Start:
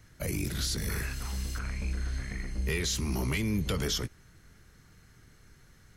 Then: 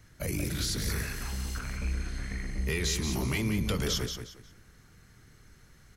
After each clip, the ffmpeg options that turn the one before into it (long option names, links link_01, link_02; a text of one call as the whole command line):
ffmpeg -i in.wav -af "aecho=1:1:179|358|537:0.447|0.121|0.0326" out.wav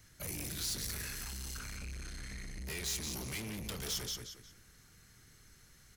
ffmpeg -i in.wav -af "asoftclip=type=tanh:threshold=-34dB,highshelf=frequency=2700:gain=10.5,volume=-6.5dB" out.wav